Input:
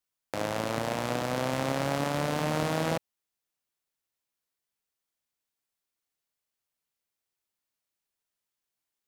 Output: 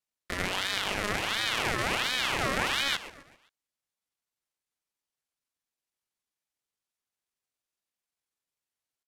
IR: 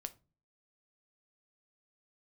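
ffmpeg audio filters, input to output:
-filter_complex "[0:a]lowpass=f=7k:w=0.5412,lowpass=f=7k:w=1.3066,asetrate=76340,aresample=44100,atempo=0.577676,asplit=2[a][b];[b]aecho=0:1:131|262|393|524:0.178|0.0765|0.0329|0.0141[c];[a][c]amix=inputs=2:normalize=0,aeval=exprs='val(0)*sin(2*PI*1800*n/s+1800*0.55/1.4*sin(2*PI*1.4*n/s))':c=same,volume=3dB"

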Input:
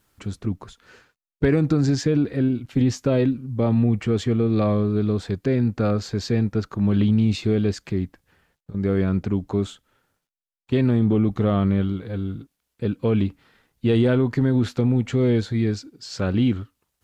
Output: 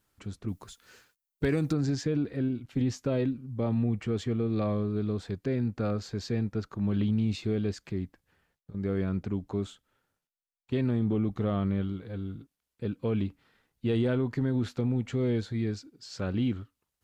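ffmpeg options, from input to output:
-filter_complex "[0:a]asettb=1/sr,asplit=3[a][b][c];[a]atrim=end=0.484[d];[b]atrim=start=0.48:end=1.73,asetpts=PTS-STARTPTS,afade=t=in:d=0.004:c=qsin,afade=t=out:st=1.246:d=0.004:c=qsin,aemphasis=mode=production:type=75kf[e];[c]atrim=start=1.726[f];[d][e]acrossfade=d=0.004:c1=hsin:c2=qsin[g];[g][f]acrossfade=d=0.004:c1=qsin:c2=hsin,volume=-8.5dB"

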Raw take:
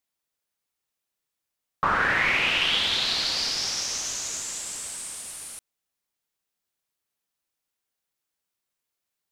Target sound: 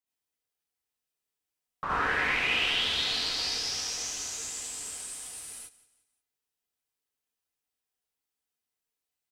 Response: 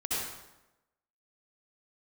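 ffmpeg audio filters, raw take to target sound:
-filter_complex "[0:a]aecho=1:1:177|354|531:0.112|0.0415|0.0154[a];[1:a]atrim=start_sample=2205,afade=t=out:st=0.15:d=0.01,atrim=end_sample=7056[b];[a][b]afir=irnorm=-1:irlink=0,volume=-8dB"

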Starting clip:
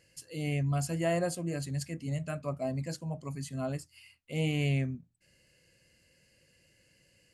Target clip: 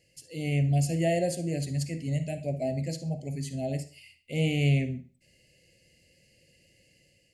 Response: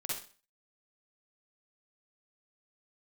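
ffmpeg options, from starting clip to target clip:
-filter_complex "[0:a]asuperstop=centerf=1200:order=8:qfactor=1.1,dynaudnorm=f=160:g=5:m=4dB,asplit=2[a][b];[b]highshelf=f=5.8k:g=-10.5[c];[1:a]atrim=start_sample=2205,lowpass=8.8k,highshelf=f=5.3k:g=8.5[d];[c][d]afir=irnorm=-1:irlink=0,volume=-9.5dB[e];[a][e]amix=inputs=2:normalize=0,volume=-2dB"

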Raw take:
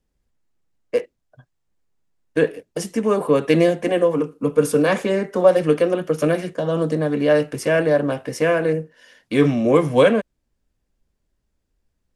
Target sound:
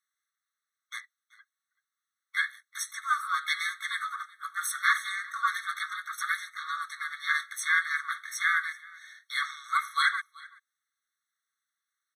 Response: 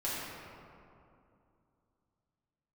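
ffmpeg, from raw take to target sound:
-filter_complex "[0:a]asplit=2[a][b];[b]asetrate=55563,aresample=44100,atempo=0.793701,volume=-4dB[c];[a][c]amix=inputs=2:normalize=0,lowshelf=f=460:g=10.5,asplit=2[d][e];[e]aecho=0:1:381:0.0708[f];[d][f]amix=inputs=2:normalize=0,afftfilt=real='re*eq(mod(floor(b*sr/1024/1100),2),1)':imag='im*eq(mod(floor(b*sr/1024/1100),2),1)':win_size=1024:overlap=0.75"

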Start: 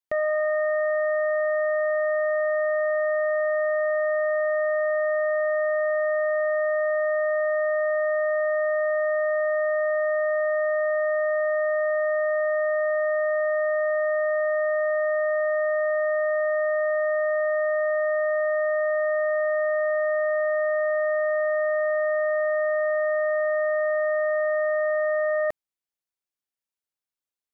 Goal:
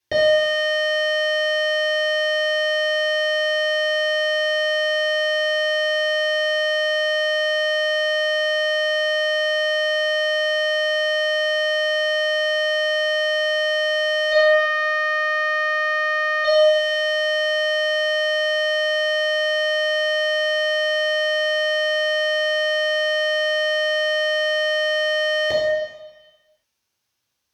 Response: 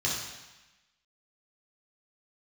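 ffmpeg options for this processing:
-filter_complex "[0:a]asplit=3[a][b][c];[a]afade=t=out:st=14.31:d=0.02[d];[b]highpass=950,afade=t=in:st=14.31:d=0.02,afade=t=out:st=16.44:d=0.02[e];[c]afade=t=in:st=16.44:d=0.02[f];[d][e][f]amix=inputs=3:normalize=0,asoftclip=type=tanh:threshold=-28dB[g];[1:a]atrim=start_sample=2205,asetrate=38808,aresample=44100[h];[g][h]afir=irnorm=-1:irlink=0,volume=8dB"

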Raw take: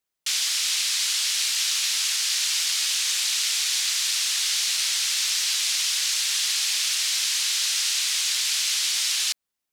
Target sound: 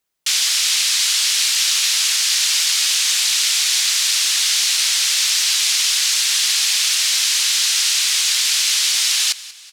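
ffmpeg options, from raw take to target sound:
-filter_complex "[0:a]asplit=5[a][b][c][d][e];[b]adelay=187,afreqshift=-31,volume=-18dB[f];[c]adelay=374,afreqshift=-62,volume=-24.7dB[g];[d]adelay=561,afreqshift=-93,volume=-31.5dB[h];[e]adelay=748,afreqshift=-124,volume=-38.2dB[i];[a][f][g][h][i]amix=inputs=5:normalize=0,volume=7dB"

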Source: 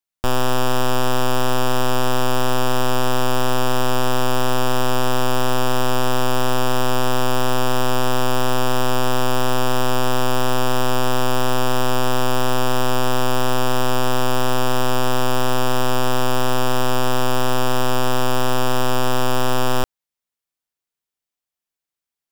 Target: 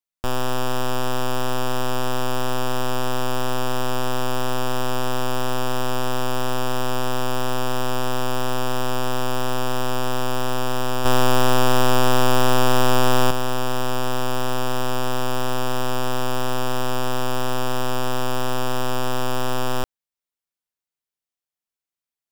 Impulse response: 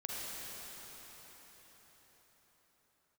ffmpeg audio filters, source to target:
-filter_complex "[0:a]asettb=1/sr,asplit=3[a][b][c];[a]atrim=end=11.054[d];[b]atrim=start=11.05:end=13.31,asetpts=PTS-STARTPTS,afade=t=in:d=0.004:c=qsin,afade=t=out:st=2.256:d=0.004:c=qsin,acontrast=82[e];[c]atrim=start=13.306[f];[d][e]acrossfade=d=0.004:c1=hsin:c2=qsin[g];[g][f]acrossfade=d=0.004:c1=qsin:c2=hsin,volume=-4.5dB"

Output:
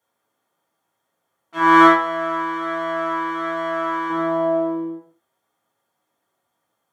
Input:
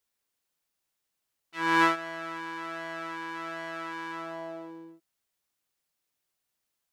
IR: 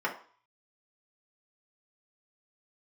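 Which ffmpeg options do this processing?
-filter_complex "[0:a]asettb=1/sr,asplit=3[a][b][c];[a]atrim=end=1.584[d];[b]atrim=start=1.58:end=4.1,asetpts=PTS-STARTPTS,afade=t=in:d=0.004:c=qsin,afade=t=out:st=2.516:d=0.004:c=qsin,lowshelf=f=400:g=-10[e];[c]atrim=start=4.096[f];[d][e]acrossfade=d=0.004:c1=hsin:c2=qsin[g];[g][f]acrossfade=d=0.004:c1=qsin:c2=hsin[h];[1:a]atrim=start_sample=2205,afade=t=out:st=0.18:d=0.01,atrim=end_sample=8379,asetrate=27783,aresample=44100[i];[h][i]afir=irnorm=-1:irlink=0,volume=4.5dB"

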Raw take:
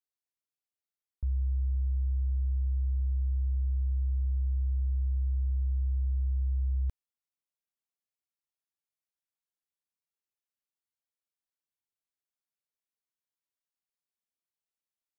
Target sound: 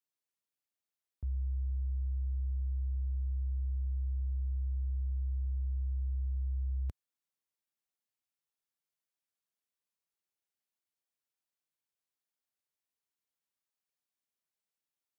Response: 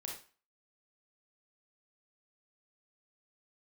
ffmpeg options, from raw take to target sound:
-af "highpass=80"

